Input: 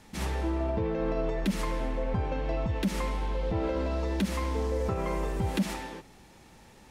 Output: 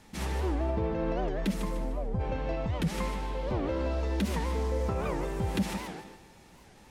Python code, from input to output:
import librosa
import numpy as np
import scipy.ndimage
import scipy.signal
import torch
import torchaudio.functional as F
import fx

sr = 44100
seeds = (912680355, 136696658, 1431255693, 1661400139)

y = fx.peak_eq(x, sr, hz=2600.0, db=fx.line((1.52, -6.5), (2.19, -15.0)), octaves=2.8, at=(1.52, 2.19), fade=0.02)
y = fx.echo_feedback(y, sr, ms=151, feedback_pct=32, wet_db=-8.5)
y = fx.record_warp(y, sr, rpm=78.0, depth_cents=250.0)
y = F.gain(torch.from_numpy(y), -1.5).numpy()